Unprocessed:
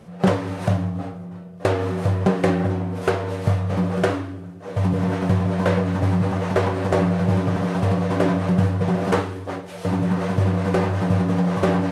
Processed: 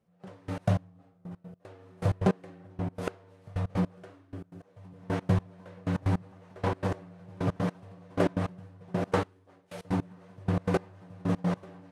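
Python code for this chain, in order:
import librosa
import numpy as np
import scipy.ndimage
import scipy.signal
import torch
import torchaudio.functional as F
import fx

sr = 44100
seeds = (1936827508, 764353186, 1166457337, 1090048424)

y = fx.step_gate(x, sr, bpm=156, pattern='.....x.x', floor_db=-24.0, edge_ms=4.5)
y = y * librosa.db_to_amplitude(-5.5)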